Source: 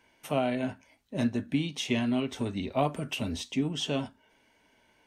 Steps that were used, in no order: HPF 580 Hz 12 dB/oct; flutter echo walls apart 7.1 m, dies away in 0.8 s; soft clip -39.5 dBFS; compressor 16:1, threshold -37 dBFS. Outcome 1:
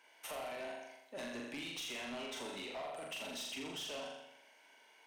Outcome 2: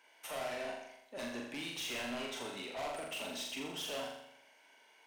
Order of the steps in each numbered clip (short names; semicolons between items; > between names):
HPF > compressor > flutter echo > soft clip; HPF > soft clip > compressor > flutter echo